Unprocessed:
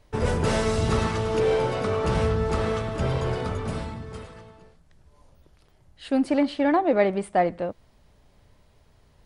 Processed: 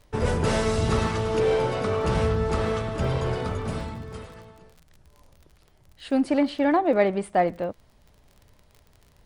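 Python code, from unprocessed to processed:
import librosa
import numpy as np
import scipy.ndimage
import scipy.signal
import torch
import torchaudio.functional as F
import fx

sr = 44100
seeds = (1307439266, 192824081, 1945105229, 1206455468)

y = fx.dmg_crackle(x, sr, seeds[0], per_s=30.0, level_db=-40.0)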